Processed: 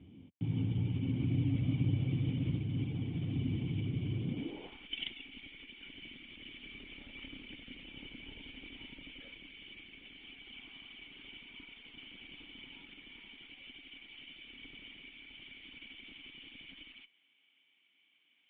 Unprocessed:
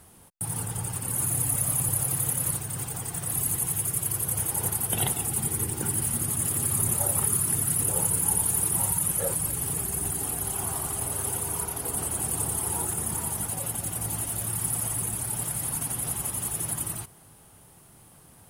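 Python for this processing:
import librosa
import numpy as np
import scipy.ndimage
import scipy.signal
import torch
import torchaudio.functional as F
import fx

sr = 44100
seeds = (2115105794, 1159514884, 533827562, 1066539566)

y = fx.filter_sweep_highpass(x, sr, from_hz=80.0, to_hz=1900.0, start_s=4.12, end_s=4.9, q=1.4)
y = fx.cheby_harmonics(y, sr, harmonics=(4,), levels_db=(-27,), full_scale_db=-10.5)
y = fx.formant_cascade(y, sr, vowel='i')
y = y * 10.0 ** (10.0 / 20.0)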